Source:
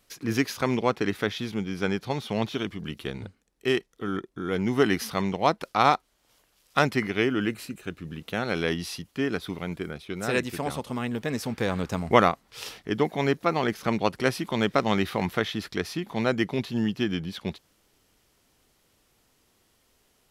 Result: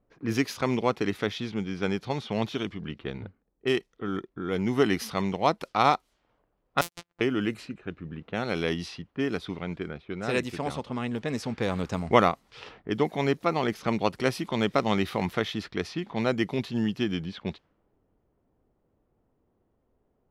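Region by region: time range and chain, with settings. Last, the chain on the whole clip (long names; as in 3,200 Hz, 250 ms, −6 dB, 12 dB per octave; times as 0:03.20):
0:06.81–0:07.21: samples sorted by size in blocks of 256 samples + first-order pre-emphasis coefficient 0.9 + noise gate −41 dBFS, range −36 dB
whole clip: dynamic equaliser 1,600 Hz, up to −4 dB, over −43 dBFS, Q 4.3; low-pass that shuts in the quiet parts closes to 670 Hz, open at −24 dBFS; high-shelf EQ 9,900 Hz −4.5 dB; level −1 dB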